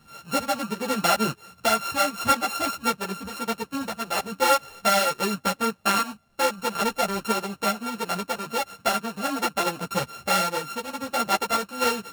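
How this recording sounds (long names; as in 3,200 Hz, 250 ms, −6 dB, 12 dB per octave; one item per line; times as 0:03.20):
a buzz of ramps at a fixed pitch in blocks of 32 samples
a shimmering, thickened sound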